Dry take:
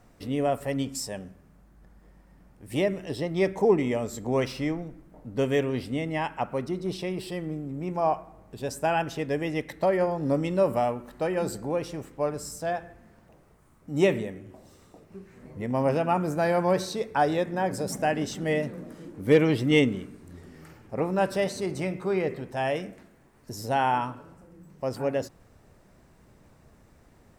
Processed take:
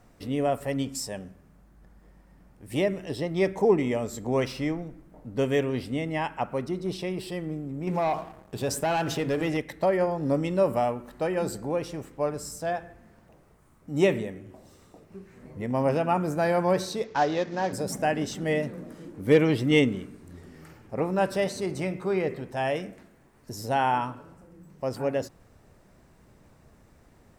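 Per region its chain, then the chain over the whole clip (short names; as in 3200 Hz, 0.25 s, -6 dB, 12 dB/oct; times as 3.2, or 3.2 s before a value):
7.87–9.57 notches 50/100/150/200/250/300/350/400/450 Hz + sample leveller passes 2 + compressor 2.5:1, threshold -25 dBFS
17.04–17.73 CVSD 32 kbps + low shelf 140 Hz -8 dB
whole clip: dry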